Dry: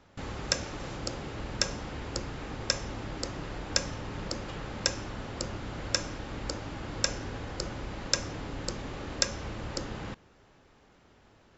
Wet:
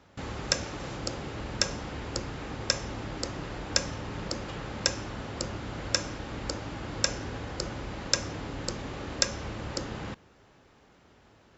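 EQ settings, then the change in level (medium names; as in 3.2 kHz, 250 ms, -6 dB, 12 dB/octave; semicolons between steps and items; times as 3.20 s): high-pass 43 Hz; +1.5 dB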